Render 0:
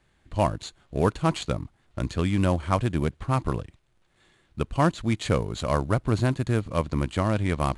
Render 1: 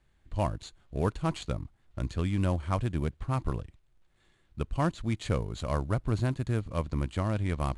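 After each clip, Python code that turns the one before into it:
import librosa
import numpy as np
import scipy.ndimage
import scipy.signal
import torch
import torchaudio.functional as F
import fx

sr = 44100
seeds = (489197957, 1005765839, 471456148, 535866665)

y = fx.low_shelf(x, sr, hz=73.0, db=12.0)
y = y * 10.0 ** (-7.5 / 20.0)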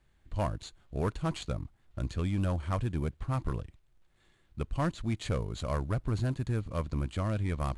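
y = 10.0 ** (-21.5 / 20.0) * np.tanh(x / 10.0 ** (-21.5 / 20.0))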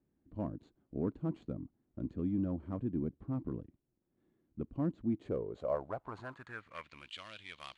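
y = fx.filter_sweep_bandpass(x, sr, from_hz=270.0, to_hz=3200.0, start_s=5.08, end_s=7.15, q=2.6)
y = y * 10.0 ** (4.5 / 20.0)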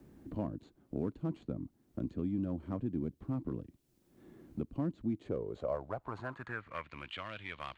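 y = fx.band_squash(x, sr, depth_pct=70)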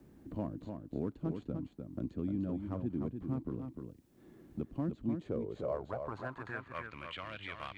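y = x + 10.0 ** (-6.0 / 20.0) * np.pad(x, (int(301 * sr / 1000.0), 0))[:len(x)]
y = y * 10.0 ** (-1.0 / 20.0)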